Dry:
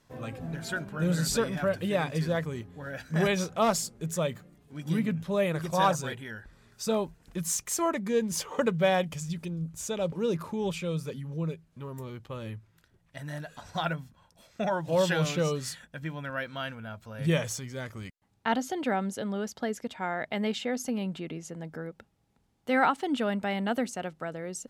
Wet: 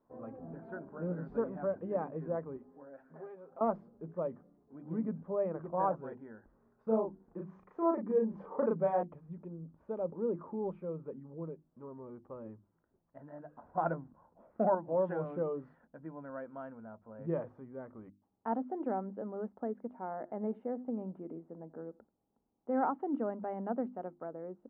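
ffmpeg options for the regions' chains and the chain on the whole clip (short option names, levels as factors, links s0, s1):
-filter_complex "[0:a]asettb=1/sr,asplit=3[s0][s1][s2];[s0]atrim=end=2.574[s3];[s1]atrim=start=2.57:end=3.61,asetpts=PTS-STARTPTS,afade=t=in:d=0.004:c=qsin,afade=t=out:st=1.036:d=0.004:c=qsin,equalizer=f=91:w=0.53:g=-14,acompressor=threshold=0.00631:ratio=3:attack=3.2:release=140:knee=1:detection=peak,aecho=1:1:7.5:0.66,atrim=end_sample=45864[s4];[s2]atrim=start=3.606[s5];[s3][s4]acrossfade=d=0.004:c1=hsin:c2=qsin[s6];[s6][s5]acrossfade=d=0.004:c1=qsin:c2=hsin,asettb=1/sr,asplit=3[s7][s8][s9];[s7]atrim=end=6.834[s10];[s8]atrim=start=6.83:end=9.03,asetpts=PTS-STARTPTS,afade=t=in:d=0.004:c=qsin,afade=t=out:st=2.196:d=0.004:c=qsin,asplit=2[s11][s12];[s12]adelay=36,volume=0.794[s13];[s11][s13]amix=inputs=2:normalize=0,atrim=end_sample=97020,bandreject=f=94.61:t=h:w=4,bandreject=f=189.22:t=h:w=4,bandreject=f=283.83:t=h:w=4,bandreject=f=378.44:t=h:w=4[s14];[s9]atrim=start=9.026[s15];[s10][s14]acrossfade=d=0.004:c1=hsin:c2=qsin[s16];[s16][s15]acrossfade=d=0.004:c1=qsin:c2=hsin,asettb=1/sr,asplit=3[s17][s18][s19];[s17]atrim=end=13.774[s20];[s18]atrim=start=13.77:end=14.75,asetpts=PTS-STARTPTS,afade=t=in:d=0.004:c=qsin,afade=t=out:st=0.976:d=0.004:c=qsin,lowpass=2600,acontrast=75[s21];[s19]atrim=start=14.746[s22];[s20][s21]acrossfade=d=0.004:c1=hsin:c2=qsin[s23];[s23][s22]acrossfade=d=0.004:c1=qsin:c2=hsin,asettb=1/sr,asplit=3[s24][s25][s26];[s24]atrim=end=19.864[s27];[s25]atrim=start=19.86:end=22.81,asetpts=PTS-STARTPTS,afade=t=in:d=0.004:c=qsin,afade=t=out:st=2.946:d=0.004:c=qsin,highshelf=f=3200:g=-11.5,aecho=1:1:85:0.0708,atrim=end_sample=130095[s28];[s26]atrim=start=22.806[s29];[s27][s28]acrossfade=d=0.004:c1=hsin:c2=qsin[s30];[s30][s29]acrossfade=d=0.004:c1=qsin:c2=hsin,lowpass=f=1100:w=0.5412,lowpass=f=1100:w=1.3066,lowshelf=f=180:t=q:w=1.5:g=-8.5,bandreject=f=50:t=h:w=6,bandreject=f=100:t=h:w=6,bandreject=f=150:t=h:w=6,bandreject=f=200:t=h:w=6,bandreject=f=250:t=h:w=6,bandreject=f=300:t=h:w=6,bandreject=f=350:t=h:w=6,volume=0.501"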